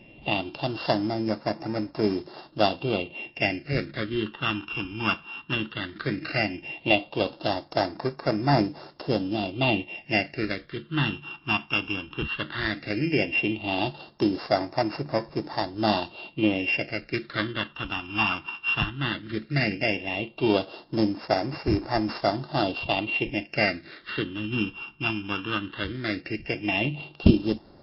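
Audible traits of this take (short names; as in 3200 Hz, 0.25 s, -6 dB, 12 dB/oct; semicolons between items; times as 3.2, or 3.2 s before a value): a buzz of ramps at a fixed pitch in blocks of 16 samples; phasing stages 8, 0.15 Hz, lowest notch 580–2900 Hz; MP3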